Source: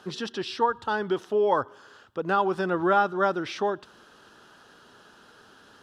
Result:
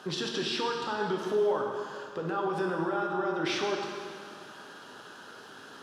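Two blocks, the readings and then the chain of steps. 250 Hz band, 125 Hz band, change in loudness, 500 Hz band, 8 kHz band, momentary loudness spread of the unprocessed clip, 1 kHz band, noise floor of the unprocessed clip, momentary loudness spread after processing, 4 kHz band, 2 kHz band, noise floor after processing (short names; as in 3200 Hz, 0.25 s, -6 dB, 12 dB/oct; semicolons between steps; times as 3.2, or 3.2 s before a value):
-2.5 dB, -2.0 dB, -5.0 dB, -3.5 dB, n/a, 11 LU, -7.5 dB, -55 dBFS, 18 LU, +3.0 dB, -3.5 dB, -49 dBFS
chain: HPF 59 Hz; bell 79 Hz -13.5 dB 0.74 oct; compressor, threshold -27 dBFS, peak gain reduction 10.5 dB; limiter -27.5 dBFS, peak gain reduction 10.5 dB; plate-style reverb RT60 2.2 s, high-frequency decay 0.9×, DRR 0 dB; gain +3 dB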